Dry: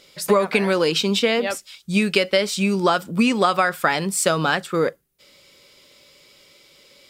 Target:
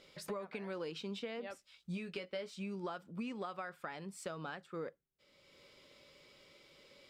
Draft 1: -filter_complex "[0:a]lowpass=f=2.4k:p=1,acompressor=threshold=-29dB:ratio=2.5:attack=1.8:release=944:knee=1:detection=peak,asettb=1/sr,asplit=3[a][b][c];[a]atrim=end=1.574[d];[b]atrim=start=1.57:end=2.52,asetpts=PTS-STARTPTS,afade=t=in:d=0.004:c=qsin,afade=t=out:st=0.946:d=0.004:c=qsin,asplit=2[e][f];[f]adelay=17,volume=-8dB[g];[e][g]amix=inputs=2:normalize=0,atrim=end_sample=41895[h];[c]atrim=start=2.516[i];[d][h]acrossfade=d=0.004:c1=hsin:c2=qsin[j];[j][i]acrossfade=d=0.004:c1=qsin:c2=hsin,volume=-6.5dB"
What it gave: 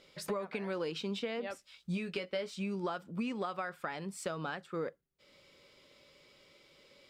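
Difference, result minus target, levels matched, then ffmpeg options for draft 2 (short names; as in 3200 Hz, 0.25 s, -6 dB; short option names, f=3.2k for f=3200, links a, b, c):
compressor: peak gain reduction -5.5 dB
-filter_complex "[0:a]lowpass=f=2.4k:p=1,acompressor=threshold=-38dB:ratio=2.5:attack=1.8:release=944:knee=1:detection=peak,asettb=1/sr,asplit=3[a][b][c];[a]atrim=end=1.574[d];[b]atrim=start=1.57:end=2.52,asetpts=PTS-STARTPTS,afade=t=in:d=0.004:c=qsin,afade=t=out:st=0.946:d=0.004:c=qsin,asplit=2[e][f];[f]adelay=17,volume=-8dB[g];[e][g]amix=inputs=2:normalize=0,atrim=end_sample=41895[h];[c]atrim=start=2.516[i];[d][h]acrossfade=d=0.004:c1=hsin:c2=qsin[j];[j][i]acrossfade=d=0.004:c1=qsin:c2=hsin,volume=-6.5dB"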